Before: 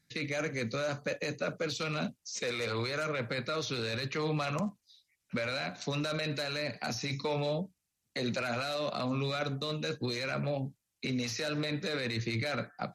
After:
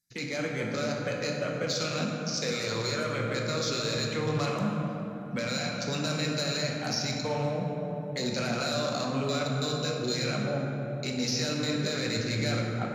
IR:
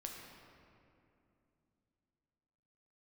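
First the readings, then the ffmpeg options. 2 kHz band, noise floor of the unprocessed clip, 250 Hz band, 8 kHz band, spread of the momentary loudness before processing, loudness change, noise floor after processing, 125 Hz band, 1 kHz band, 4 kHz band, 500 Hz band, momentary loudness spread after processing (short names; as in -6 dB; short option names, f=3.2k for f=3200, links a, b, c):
+2.0 dB, -83 dBFS, +5.0 dB, +8.0 dB, 4 LU, +4.0 dB, -36 dBFS, +5.0 dB, +3.5 dB, +5.5 dB, +3.5 dB, 4 LU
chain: -filter_complex "[0:a]afwtdn=0.00708,aexciter=amount=5.6:drive=2.9:freq=4.6k[a];[1:a]atrim=start_sample=2205,asetrate=29106,aresample=44100[b];[a][b]afir=irnorm=-1:irlink=0,volume=3dB"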